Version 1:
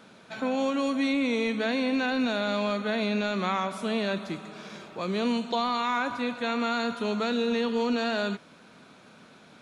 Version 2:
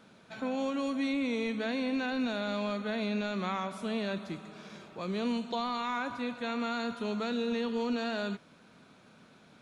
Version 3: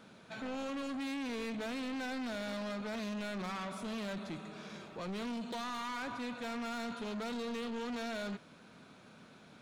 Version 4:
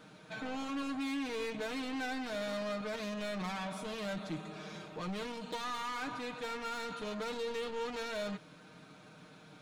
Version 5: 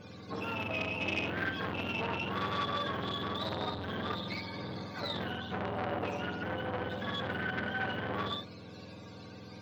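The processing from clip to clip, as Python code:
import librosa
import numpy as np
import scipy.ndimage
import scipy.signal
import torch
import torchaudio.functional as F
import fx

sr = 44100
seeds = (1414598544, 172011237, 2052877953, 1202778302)

y1 = fx.low_shelf(x, sr, hz=150.0, db=7.0)
y1 = y1 * 10.0 ** (-6.5 / 20.0)
y2 = 10.0 ** (-38.0 / 20.0) * np.tanh(y1 / 10.0 ** (-38.0 / 20.0))
y2 = y2 * 10.0 ** (1.0 / 20.0)
y3 = y2 + 0.72 * np.pad(y2, (int(6.5 * sr / 1000.0), 0))[:len(y2)]
y4 = fx.octave_mirror(y3, sr, pivot_hz=840.0)
y4 = fx.room_early_taps(y4, sr, ms=(56, 68), db=(-7.0, -8.5))
y4 = fx.transformer_sat(y4, sr, knee_hz=1500.0)
y4 = y4 * 10.0 ** (7.0 / 20.0)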